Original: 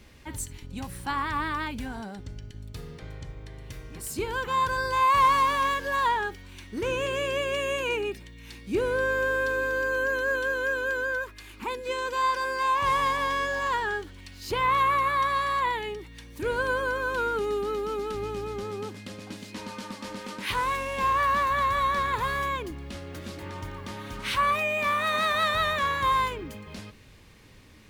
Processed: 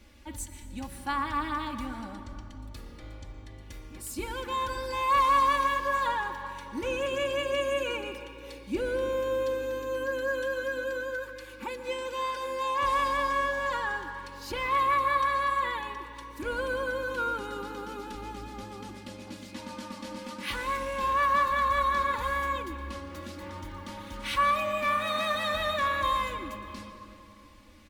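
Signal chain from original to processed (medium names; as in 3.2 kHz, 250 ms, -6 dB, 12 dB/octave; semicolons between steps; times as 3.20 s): comb 3.5 ms, depth 81%; reverberation RT60 3.1 s, pre-delay 110 ms, DRR 9 dB; trim -5.5 dB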